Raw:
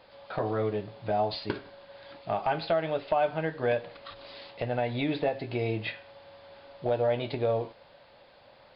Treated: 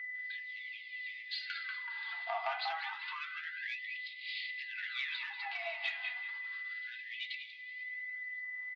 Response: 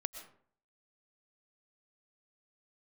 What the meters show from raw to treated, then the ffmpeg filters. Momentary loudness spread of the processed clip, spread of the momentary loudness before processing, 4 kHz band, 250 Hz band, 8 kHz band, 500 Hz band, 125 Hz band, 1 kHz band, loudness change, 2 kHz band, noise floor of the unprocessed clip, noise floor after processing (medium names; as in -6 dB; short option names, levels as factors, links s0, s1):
6 LU, 17 LU, 0.0 dB, under -40 dB, no reading, -23.0 dB, under -40 dB, -10.5 dB, -8.5 dB, +4.0 dB, -57 dBFS, -48 dBFS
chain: -filter_complex "[0:a]agate=range=0.178:threshold=0.00316:ratio=16:detection=peak,acrossover=split=1000[s0][s1];[s0]aeval=exprs='sgn(val(0))*max(abs(val(0))-0.002,0)':c=same[s2];[s1]dynaudnorm=f=120:g=7:m=2.37[s3];[s2][s3]amix=inputs=2:normalize=0,asplit=2[s4][s5];[s5]adelay=189,lowpass=f=2500:p=1,volume=0.473,asplit=2[s6][s7];[s7]adelay=189,lowpass=f=2500:p=1,volume=0.42,asplit=2[s8][s9];[s9]adelay=189,lowpass=f=2500:p=1,volume=0.42,asplit=2[s10][s11];[s11]adelay=189,lowpass=f=2500:p=1,volume=0.42,asplit=2[s12][s13];[s13]adelay=189,lowpass=f=2500:p=1,volume=0.42[s14];[s4][s6][s8][s10][s12][s14]amix=inputs=6:normalize=0,aphaser=in_gain=1:out_gain=1:delay=4.4:decay=0.52:speed=0.23:type=sinusoidal,asoftclip=type=tanh:threshold=0.0944,aeval=exprs='val(0)+0.0158*sin(2*PI*2000*n/s)':c=same,highpass=240,acompressor=threshold=0.0355:ratio=6,flanger=delay=3.6:depth=4.3:regen=78:speed=1.1:shape=triangular,lowpass=f=4500:w=0.5412,lowpass=f=4500:w=1.3066,afftfilt=real='re*gte(b*sr/1024,630*pow(2000/630,0.5+0.5*sin(2*PI*0.3*pts/sr)))':imag='im*gte(b*sr/1024,630*pow(2000/630,0.5+0.5*sin(2*PI*0.3*pts/sr)))':win_size=1024:overlap=0.75,volume=1.12"